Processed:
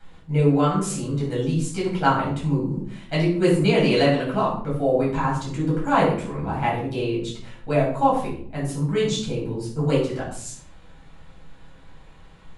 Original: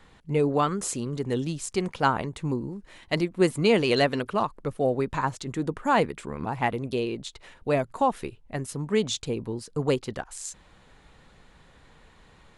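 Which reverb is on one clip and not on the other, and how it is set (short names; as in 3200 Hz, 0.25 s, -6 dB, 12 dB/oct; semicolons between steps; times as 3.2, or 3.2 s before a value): shoebox room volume 760 m³, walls furnished, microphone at 7.8 m; gain -7 dB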